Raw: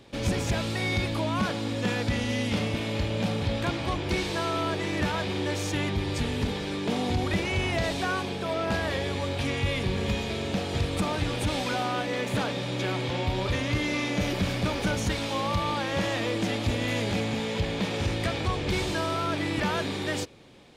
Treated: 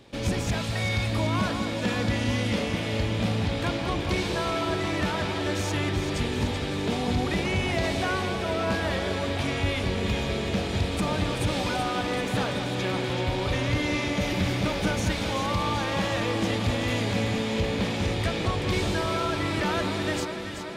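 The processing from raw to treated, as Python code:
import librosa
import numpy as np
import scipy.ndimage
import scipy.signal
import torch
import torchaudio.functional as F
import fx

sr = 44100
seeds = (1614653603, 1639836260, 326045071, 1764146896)

p1 = fx.peak_eq(x, sr, hz=340.0, db=-11.5, octaves=0.61, at=(0.47, 1.12))
y = p1 + fx.echo_alternate(p1, sr, ms=191, hz=1600.0, feedback_pct=83, wet_db=-6.5, dry=0)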